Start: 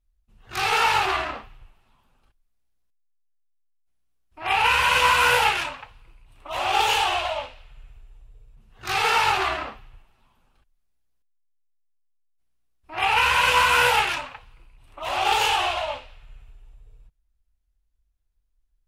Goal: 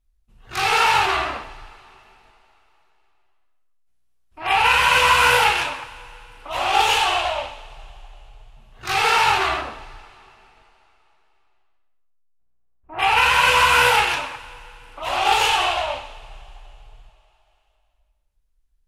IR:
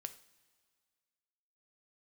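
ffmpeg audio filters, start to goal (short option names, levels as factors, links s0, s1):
-filter_complex "[0:a]asettb=1/sr,asplit=3[s0][s1][s2];[s0]atrim=end=9.614[s3];[s1]atrim=start=9.61:end=12.99,asetpts=PTS-STARTPTS,afade=t=in:d=0.004:c=qsin,afade=t=out:st=3.376:d=0.004:c=qsin,lowpass=1100[s4];[s2]atrim=start=12.986[s5];[s3][s4]acrossfade=d=0.004:c1=hsin:c2=qsin[s6];[s6][s5]acrossfade=d=0.004:c1=qsin:c2=hsin[s7];[1:a]atrim=start_sample=2205,asetrate=25578,aresample=44100[s8];[s7][s8]afir=irnorm=-1:irlink=0,volume=1.58"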